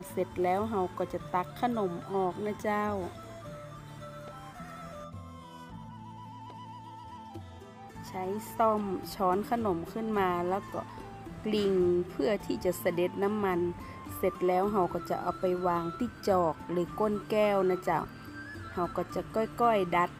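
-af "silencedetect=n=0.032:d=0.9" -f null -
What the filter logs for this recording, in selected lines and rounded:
silence_start: 3.08
silence_end: 8.16 | silence_duration: 5.08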